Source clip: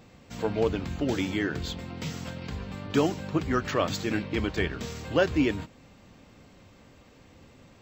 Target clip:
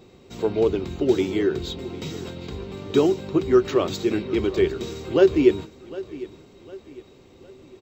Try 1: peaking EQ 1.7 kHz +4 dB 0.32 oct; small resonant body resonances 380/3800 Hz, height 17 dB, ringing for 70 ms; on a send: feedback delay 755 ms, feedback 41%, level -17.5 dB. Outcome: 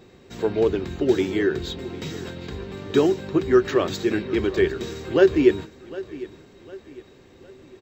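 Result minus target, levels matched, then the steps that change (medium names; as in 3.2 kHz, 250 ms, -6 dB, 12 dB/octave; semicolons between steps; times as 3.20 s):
2 kHz band +4.5 dB
change: peaking EQ 1.7 kHz -6 dB 0.32 oct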